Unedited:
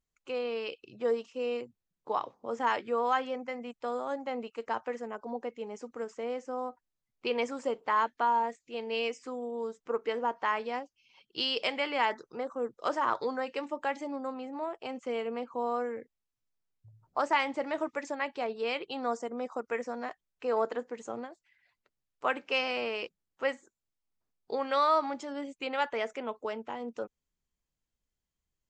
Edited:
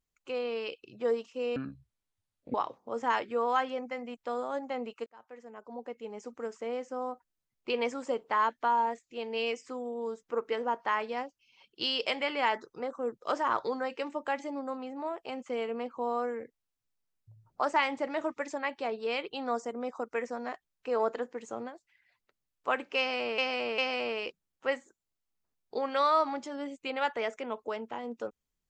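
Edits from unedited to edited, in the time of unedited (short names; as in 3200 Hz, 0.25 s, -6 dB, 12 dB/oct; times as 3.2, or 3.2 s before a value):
1.56–2.11 speed 56%
4.63–5.89 fade in
22.55–22.95 loop, 3 plays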